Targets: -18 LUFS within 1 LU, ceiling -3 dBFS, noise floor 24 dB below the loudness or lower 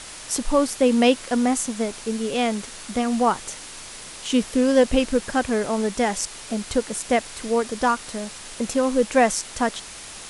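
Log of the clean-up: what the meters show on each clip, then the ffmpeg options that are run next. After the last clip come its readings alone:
noise floor -39 dBFS; noise floor target -47 dBFS; loudness -22.5 LUFS; peak -5.0 dBFS; loudness target -18.0 LUFS
-> -af "afftdn=nr=8:nf=-39"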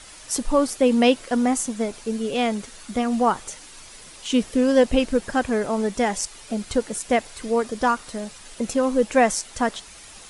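noise floor -44 dBFS; noise floor target -47 dBFS
-> -af "afftdn=nr=6:nf=-44"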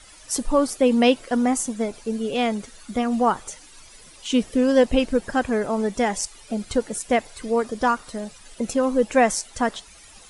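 noise floor -48 dBFS; loudness -23.0 LUFS; peak -5.0 dBFS; loudness target -18.0 LUFS
-> -af "volume=5dB,alimiter=limit=-3dB:level=0:latency=1"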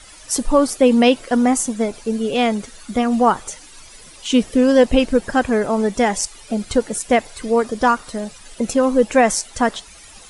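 loudness -18.0 LUFS; peak -3.0 dBFS; noise floor -43 dBFS

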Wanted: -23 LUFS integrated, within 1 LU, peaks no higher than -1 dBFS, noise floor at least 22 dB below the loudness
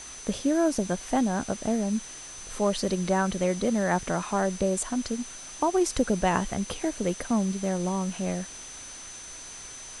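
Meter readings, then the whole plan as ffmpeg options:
steady tone 6100 Hz; tone level -42 dBFS; noise floor -43 dBFS; noise floor target -50 dBFS; loudness -27.5 LUFS; peak -10.0 dBFS; loudness target -23.0 LUFS
-> -af "bandreject=f=6.1k:w=30"
-af "afftdn=nr=7:nf=-43"
-af "volume=4.5dB"

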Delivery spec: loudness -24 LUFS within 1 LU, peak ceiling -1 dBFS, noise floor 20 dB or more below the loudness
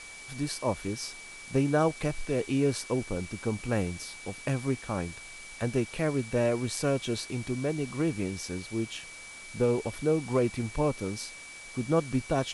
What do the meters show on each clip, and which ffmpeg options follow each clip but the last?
steady tone 2300 Hz; tone level -45 dBFS; noise floor -46 dBFS; noise floor target -51 dBFS; loudness -30.5 LUFS; peak -13.0 dBFS; loudness target -24.0 LUFS
-> -af "bandreject=f=2.3k:w=30"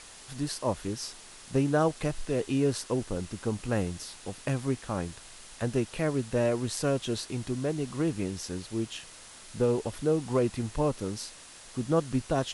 steady tone none; noise floor -49 dBFS; noise floor target -51 dBFS
-> -af "afftdn=nr=6:nf=-49"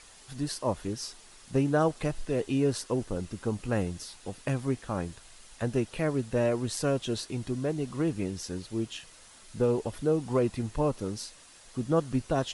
noise floor -54 dBFS; loudness -31.0 LUFS; peak -13.0 dBFS; loudness target -24.0 LUFS
-> -af "volume=7dB"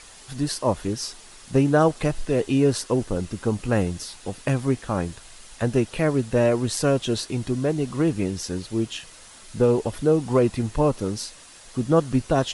loudness -24.0 LUFS; peak -6.0 dBFS; noise floor -47 dBFS

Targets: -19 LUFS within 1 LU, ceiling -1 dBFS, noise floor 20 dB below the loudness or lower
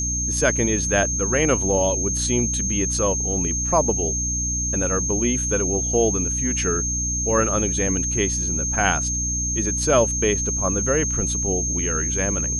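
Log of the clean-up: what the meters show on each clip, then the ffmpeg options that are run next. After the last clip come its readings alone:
hum 60 Hz; harmonics up to 300 Hz; hum level -26 dBFS; steady tone 6400 Hz; tone level -23 dBFS; loudness -20.5 LUFS; peak -4.0 dBFS; loudness target -19.0 LUFS
-> -af "bandreject=f=60:t=h:w=6,bandreject=f=120:t=h:w=6,bandreject=f=180:t=h:w=6,bandreject=f=240:t=h:w=6,bandreject=f=300:t=h:w=6"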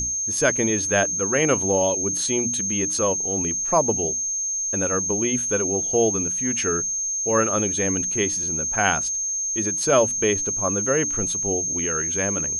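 hum none; steady tone 6400 Hz; tone level -23 dBFS
-> -af "bandreject=f=6.4k:w=30"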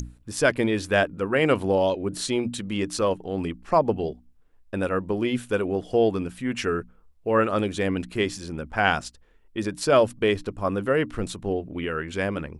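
steady tone none; loudness -25.5 LUFS; peak -4.5 dBFS; loudness target -19.0 LUFS
-> -af "volume=6.5dB,alimiter=limit=-1dB:level=0:latency=1"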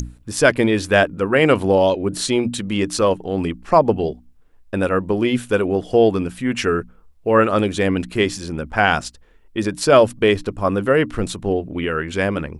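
loudness -19.0 LUFS; peak -1.0 dBFS; noise floor -50 dBFS

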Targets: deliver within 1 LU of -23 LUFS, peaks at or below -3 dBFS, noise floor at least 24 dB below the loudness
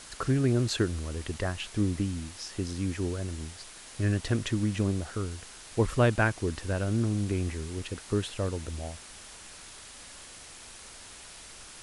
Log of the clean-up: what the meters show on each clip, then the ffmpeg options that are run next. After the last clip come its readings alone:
noise floor -48 dBFS; noise floor target -55 dBFS; loudness -30.5 LUFS; peak -11.5 dBFS; loudness target -23.0 LUFS
-> -af "afftdn=nr=7:nf=-48"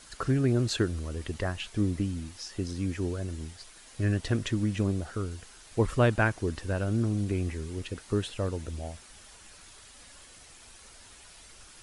noise floor -52 dBFS; noise floor target -55 dBFS
-> -af "afftdn=nr=6:nf=-52"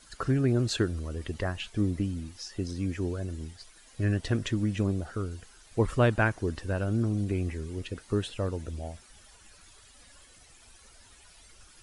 noise floor -56 dBFS; loudness -30.5 LUFS; peak -11.5 dBFS; loudness target -23.0 LUFS
-> -af "volume=7.5dB"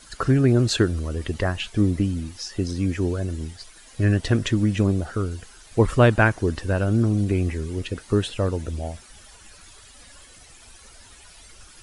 loudness -23.0 LUFS; peak -4.0 dBFS; noise floor -49 dBFS

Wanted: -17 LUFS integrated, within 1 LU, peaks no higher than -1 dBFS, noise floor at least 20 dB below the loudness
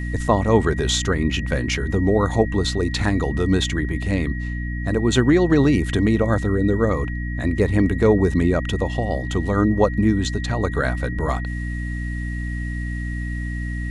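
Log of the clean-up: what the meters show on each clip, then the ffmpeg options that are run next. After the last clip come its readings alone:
hum 60 Hz; harmonics up to 300 Hz; hum level -24 dBFS; steady tone 1900 Hz; tone level -34 dBFS; loudness -21.0 LUFS; peak -3.0 dBFS; loudness target -17.0 LUFS
-> -af "bandreject=f=60:t=h:w=4,bandreject=f=120:t=h:w=4,bandreject=f=180:t=h:w=4,bandreject=f=240:t=h:w=4,bandreject=f=300:t=h:w=4"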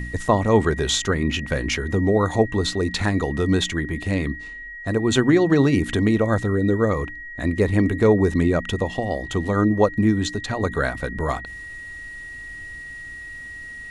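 hum none; steady tone 1900 Hz; tone level -34 dBFS
-> -af "bandreject=f=1.9k:w=30"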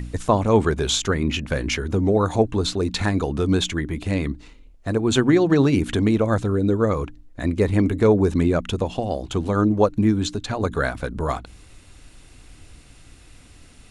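steady tone none; loudness -21.5 LUFS; peak -4.0 dBFS; loudness target -17.0 LUFS
-> -af "volume=4.5dB,alimiter=limit=-1dB:level=0:latency=1"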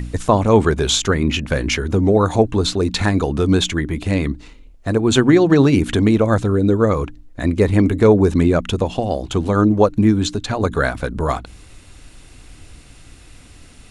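loudness -17.0 LUFS; peak -1.0 dBFS; noise floor -44 dBFS

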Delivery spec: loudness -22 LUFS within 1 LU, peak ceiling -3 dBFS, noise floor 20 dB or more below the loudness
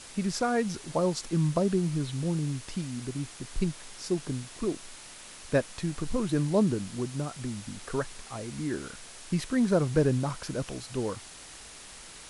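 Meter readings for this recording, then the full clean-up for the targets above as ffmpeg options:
noise floor -47 dBFS; noise floor target -51 dBFS; loudness -30.5 LUFS; peak -12.0 dBFS; loudness target -22.0 LUFS
-> -af "afftdn=nr=6:nf=-47"
-af "volume=8.5dB"

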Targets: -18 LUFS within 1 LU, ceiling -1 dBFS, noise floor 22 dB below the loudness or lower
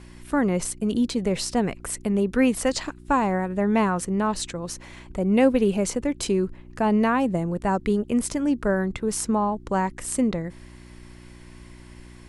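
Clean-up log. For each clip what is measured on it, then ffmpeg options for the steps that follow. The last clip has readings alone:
hum 60 Hz; harmonics up to 360 Hz; hum level -45 dBFS; loudness -24.0 LUFS; peak -7.0 dBFS; loudness target -18.0 LUFS
-> -af "bandreject=f=60:t=h:w=4,bandreject=f=120:t=h:w=4,bandreject=f=180:t=h:w=4,bandreject=f=240:t=h:w=4,bandreject=f=300:t=h:w=4,bandreject=f=360:t=h:w=4"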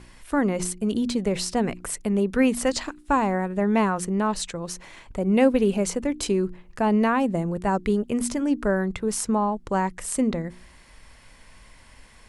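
hum none; loudness -24.5 LUFS; peak -6.5 dBFS; loudness target -18.0 LUFS
-> -af "volume=6.5dB,alimiter=limit=-1dB:level=0:latency=1"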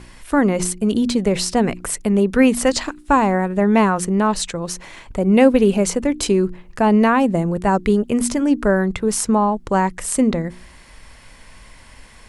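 loudness -18.0 LUFS; peak -1.0 dBFS; noise floor -45 dBFS

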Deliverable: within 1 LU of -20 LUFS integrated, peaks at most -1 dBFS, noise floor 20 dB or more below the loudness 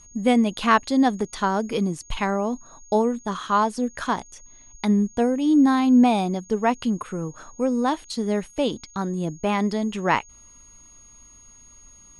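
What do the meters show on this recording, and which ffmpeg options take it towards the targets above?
steady tone 6600 Hz; tone level -48 dBFS; loudness -23.0 LUFS; peak -5.0 dBFS; loudness target -20.0 LUFS
-> -af "bandreject=f=6.6k:w=30"
-af "volume=3dB"

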